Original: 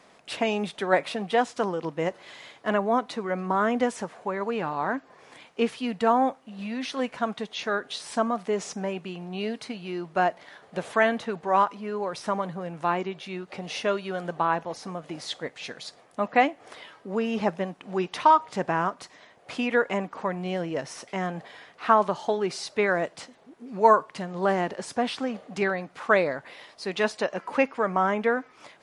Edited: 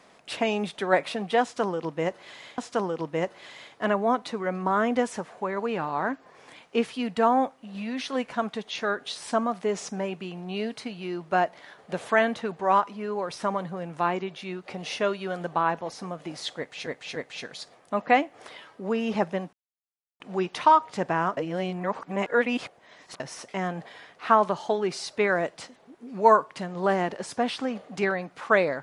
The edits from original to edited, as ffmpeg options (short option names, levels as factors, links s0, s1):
-filter_complex "[0:a]asplit=7[s0][s1][s2][s3][s4][s5][s6];[s0]atrim=end=2.582[s7];[s1]atrim=start=1.418:end=15.712[s8];[s2]atrim=start=15.418:end=15.712[s9];[s3]atrim=start=15.418:end=17.79,asetpts=PTS-STARTPTS,afade=t=out:st=2.368:d=0.004:c=hsin,apad=pad_dur=0.67[s10];[s4]atrim=start=17.79:end=18.962,asetpts=PTS-STARTPTS,afade=t=in:d=0.004:c=hsin[s11];[s5]atrim=start=18.958:end=20.792,asetpts=PTS-STARTPTS,areverse[s12];[s6]atrim=start=20.788[s13];[s7][s8]acrossfade=d=0.004:c1=hsin:c2=hsin[s14];[s14][s9]acrossfade=d=0.004:c1=hsin:c2=hsin[s15];[s10][s11]concat=n=2:v=0:a=1[s16];[s15][s16]acrossfade=d=0.004:c1=hsin:c2=hsin[s17];[s17][s12]acrossfade=d=0.004:c1=hsin:c2=hsin[s18];[s18][s13]acrossfade=d=0.004:c1=hsin:c2=hsin"